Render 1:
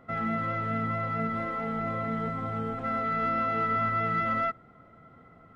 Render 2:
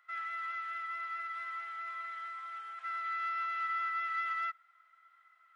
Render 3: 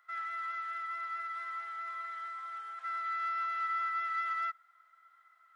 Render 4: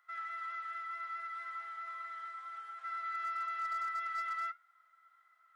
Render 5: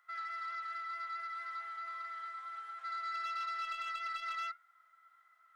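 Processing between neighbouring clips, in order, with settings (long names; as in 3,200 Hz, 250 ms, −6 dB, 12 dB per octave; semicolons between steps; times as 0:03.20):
high-pass filter 1,400 Hz 24 dB per octave; level −3 dB
parametric band 2,600 Hz −7 dB 0.81 octaves; level +2.5 dB
flanger 0.63 Hz, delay 6.8 ms, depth 5.2 ms, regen −71%; gain into a clipping stage and back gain 33 dB; level +1 dB
saturating transformer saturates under 1,500 Hz; level +1 dB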